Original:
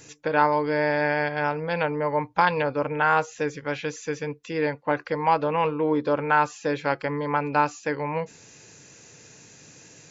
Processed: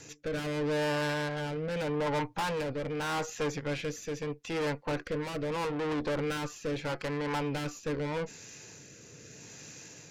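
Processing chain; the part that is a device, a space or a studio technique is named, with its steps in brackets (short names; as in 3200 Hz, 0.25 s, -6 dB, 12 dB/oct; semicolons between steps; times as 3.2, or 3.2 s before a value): overdriven rotary cabinet (tube stage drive 32 dB, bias 0.55; rotary speaker horn 0.8 Hz); gain +4.5 dB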